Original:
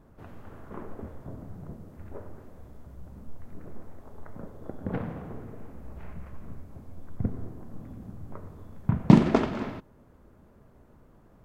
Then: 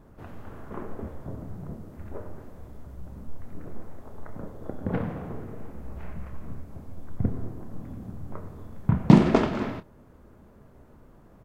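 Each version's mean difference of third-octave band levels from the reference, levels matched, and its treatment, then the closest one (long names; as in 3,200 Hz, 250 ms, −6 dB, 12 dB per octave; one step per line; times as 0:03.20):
1.5 dB: in parallel at −4 dB: soft clipping −15 dBFS, distortion −7 dB
on the sum: double-tracking delay 28 ms −12 dB
level −1 dB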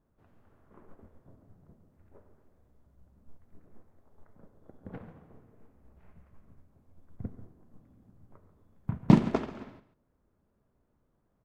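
8.0 dB: on a send: single-tap delay 139 ms −11.5 dB
on the sum: expander for the loud parts 1.5 to 1, over −41 dBFS
level −3 dB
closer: first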